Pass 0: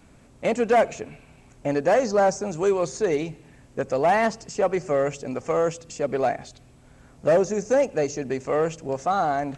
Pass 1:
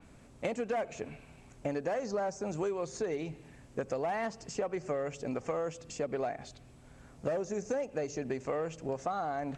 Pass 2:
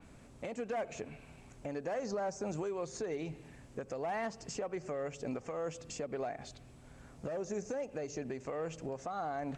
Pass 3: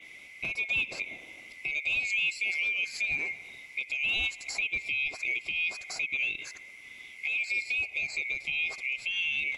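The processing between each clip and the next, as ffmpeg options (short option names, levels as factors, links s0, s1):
-af "acompressor=threshold=0.0447:ratio=10,adynamicequalizer=threshold=0.00224:dfrequency=4400:dqfactor=0.7:tfrequency=4400:tqfactor=0.7:attack=5:release=100:ratio=0.375:range=2:mode=cutabove:tftype=highshelf,volume=0.668"
-af "alimiter=level_in=1.78:limit=0.0631:level=0:latency=1:release=257,volume=0.562"
-af "afftfilt=real='real(if(lt(b,920),b+92*(1-2*mod(floor(b/92),2)),b),0)':imag='imag(if(lt(b,920),b+92*(1-2*mod(floor(b/92),2)),b),0)':win_size=2048:overlap=0.75,volume=2.24"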